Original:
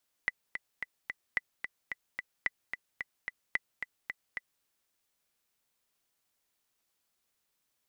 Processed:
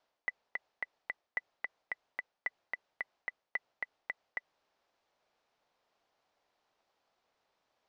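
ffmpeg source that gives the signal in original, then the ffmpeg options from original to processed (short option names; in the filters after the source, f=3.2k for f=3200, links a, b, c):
-f lavfi -i "aevalsrc='pow(10,(-15-7.5*gte(mod(t,4*60/220),60/220))/20)*sin(2*PI*1990*mod(t,60/220))*exp(-6.91*mod(t,60/220)/0.03)':d=4.36:s=44100"
-af "lowpass=f=5.4k:w=0.5412,lowpass=f=5.4k:w=1.3066,equalizer=f=700:t=o:w=1.9:g=14,areverse,acompressor=threshold=-35dB:ratio=4,areverse"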